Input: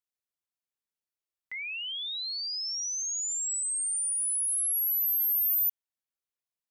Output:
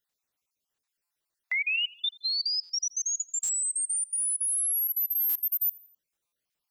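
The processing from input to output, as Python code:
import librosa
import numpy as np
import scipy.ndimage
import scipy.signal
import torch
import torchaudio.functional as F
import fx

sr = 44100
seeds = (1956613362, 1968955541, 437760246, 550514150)

p1 = fx.spec_dropout(x, sr, seeds[0], share_pct=44)
p2 = fx.over_compress(p1, sr, threshold_db=-37.0, ratio=-0.5)
p3 = p1 + F.gain(torch.from_numpy(p2), 1.0).numpy()
p4 = fx.echo_feedback(p3, sr, ms=84, feedback_pct=48, wet_db=-23.0)
y = fx.buffer_glitch(p4, sr, at_s=(1.04, 2.63, 3.43, 5.29, 6.26), block=256, repeats=10)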